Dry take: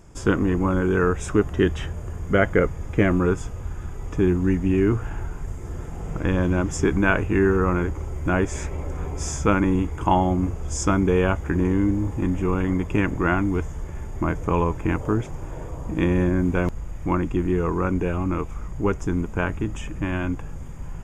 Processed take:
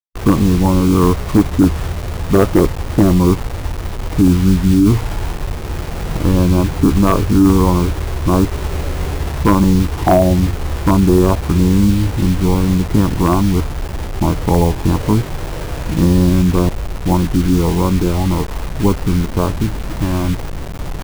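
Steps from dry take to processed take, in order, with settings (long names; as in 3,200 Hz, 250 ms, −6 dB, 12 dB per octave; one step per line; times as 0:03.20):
low-pass filter 1,300 Hz 24 dB per octave
bit reduction 6 bits
formants moved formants −4 semitones
wave folding −11 dBFS
level +9 dB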